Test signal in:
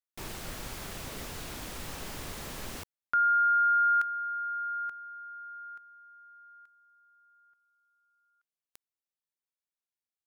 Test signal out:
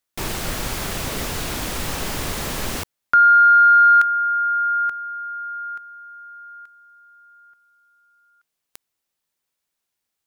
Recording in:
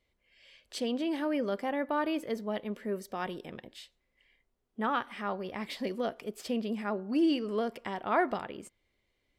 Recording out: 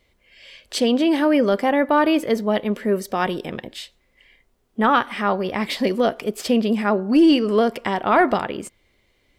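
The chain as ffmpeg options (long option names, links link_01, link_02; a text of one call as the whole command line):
ffmpeg -i in.wav -af "acontrast=61,apsyclip=16dB,volume=-8.5dB" out.wav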